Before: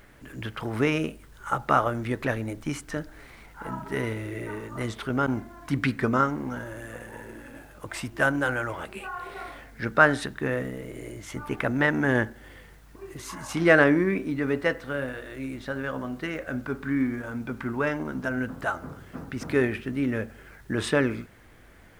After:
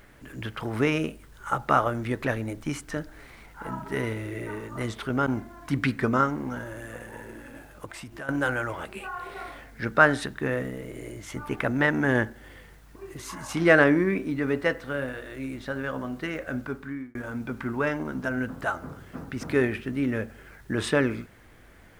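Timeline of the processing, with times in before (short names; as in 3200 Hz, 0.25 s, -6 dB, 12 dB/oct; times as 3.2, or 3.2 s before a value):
7.85–8.29 compressor 3:1, threshold -39 dBFS
16.59–17.15 fade out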